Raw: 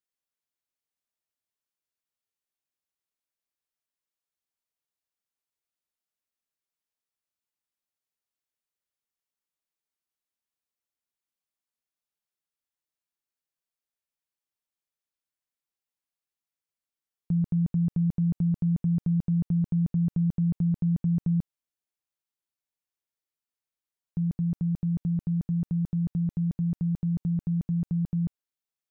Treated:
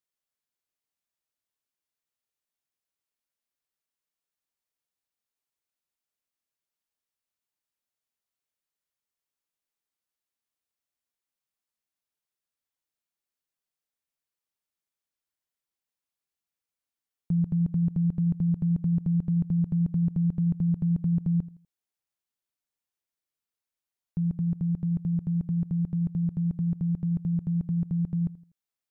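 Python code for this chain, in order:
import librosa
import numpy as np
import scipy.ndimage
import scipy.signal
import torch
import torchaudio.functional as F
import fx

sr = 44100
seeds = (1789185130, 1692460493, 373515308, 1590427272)

y = fx.echo_feedback(x, sr, ms=82, feedback_pct=35, wet_db=-18.5)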